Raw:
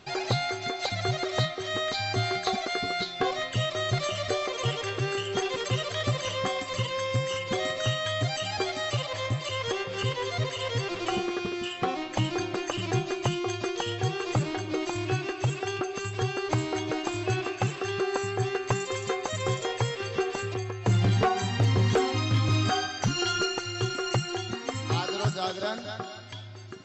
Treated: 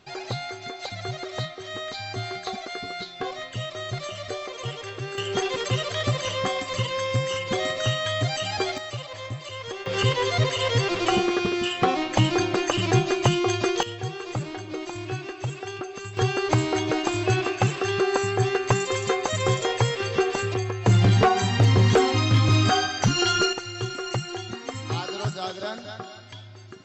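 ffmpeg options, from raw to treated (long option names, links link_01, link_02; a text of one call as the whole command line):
ffmpeg -i in.wav -af "asetnsamples=nb_out_samples=441:pad=0,asendcmd='5.18 volume volume 3dB;8.78 volume volume -4.5dB;9.86 volume volume 7dB;13.83 volume volume -3dB;16.17 volume volume 5.5dB;23.53 volume volume -1dB',volume=-4dB" out.wav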